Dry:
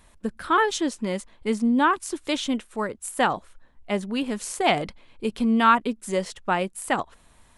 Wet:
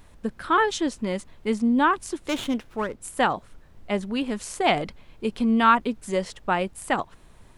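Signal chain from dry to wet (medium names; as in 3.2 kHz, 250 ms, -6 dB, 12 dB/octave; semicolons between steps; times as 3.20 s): treble shelf 9 kHz -7.5 dB; added noise brown -50 dBFS; 2.28–3.01 s: sliding maximum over 5 samples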